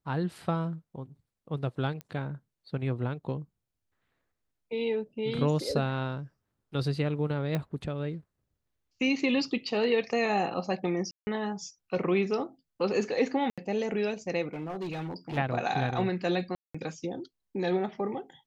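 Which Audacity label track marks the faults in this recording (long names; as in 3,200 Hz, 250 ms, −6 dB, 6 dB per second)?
2.010000	2.010000	click −25 dBFS
7.550000	7.550000	click −18 dBFS
11.110000	11.270000	drop-out 160 ms
13.500000	13.580000	drop-out 76 ms
14.530000	15.380000	clipping −31 dBFS
16.550000	16.750000	drop-out 195 ms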